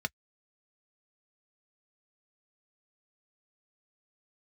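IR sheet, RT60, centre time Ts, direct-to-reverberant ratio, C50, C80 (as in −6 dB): non-exponential decay, 2 ms, 6.5 dB, 54.0 dB, 60.0 dB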